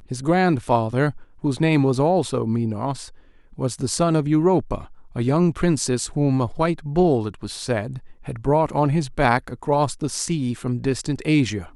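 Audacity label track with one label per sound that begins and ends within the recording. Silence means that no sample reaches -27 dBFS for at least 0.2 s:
1.440000	3.050000	sound
3.590000	4.810000	sound
5.160000	7.980000	sound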